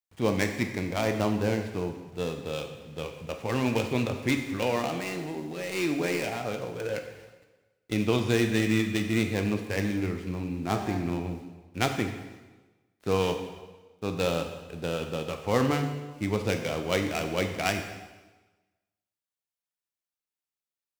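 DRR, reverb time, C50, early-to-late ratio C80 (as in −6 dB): 4.5 dB, 1.2 s, 7.0 dB, 9.0 dB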